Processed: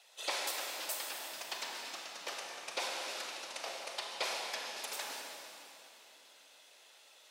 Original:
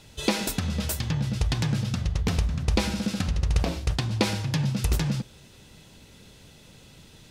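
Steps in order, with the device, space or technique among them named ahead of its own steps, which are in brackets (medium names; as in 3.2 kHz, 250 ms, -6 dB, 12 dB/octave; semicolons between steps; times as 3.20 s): whispering ghost (whisper effect; high-pass 590 Hz 24 dB/octave; reverberation RT60 3.2 s, pre-delay 27 ms, DRR -0.5 dB); trim -8.5 dB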